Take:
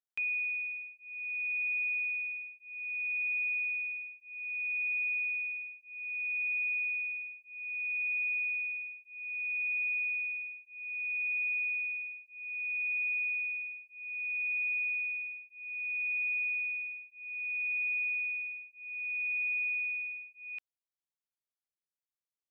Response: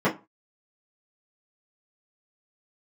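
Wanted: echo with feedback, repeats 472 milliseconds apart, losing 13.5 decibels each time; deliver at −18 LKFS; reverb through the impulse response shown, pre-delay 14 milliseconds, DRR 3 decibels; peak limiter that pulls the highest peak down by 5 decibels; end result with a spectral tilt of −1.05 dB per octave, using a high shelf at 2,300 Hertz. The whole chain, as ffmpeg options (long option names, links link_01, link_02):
-filter_complex "[0:a]highshelf=frequency=2300:gain=6,alimiter=level_in=7dB:limit=-24dB:level=0:latency=1,volume=-7dB,aecho=1:1:472|944:0.211|0.0444,asplit=2[link_01][link_02];[1:a]atrim=start_sample=2205,adelay=14[link_03];[link_02][link_03]afir=irnorm=-1:irlink=0,volume=-19dB[link_04];[link_01][link_04]amix=inputs=2:normalize=0,volume=11dB"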